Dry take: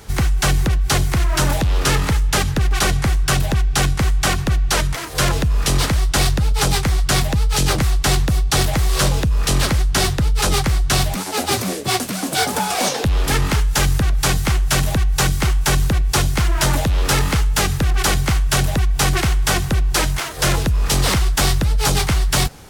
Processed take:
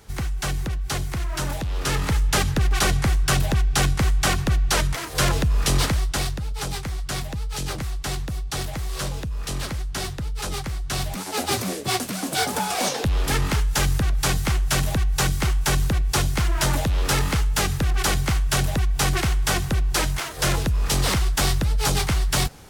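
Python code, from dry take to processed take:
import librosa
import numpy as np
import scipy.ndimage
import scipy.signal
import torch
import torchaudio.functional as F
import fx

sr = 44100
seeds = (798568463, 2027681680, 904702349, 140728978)

y = fx.gain(x, sr, db=fx.line((1.71, -9.5), (2.22, -3.0), (5.84, -3.0), (6.41, -11.5), (10.82, -11.5), (11.35, -4.5)))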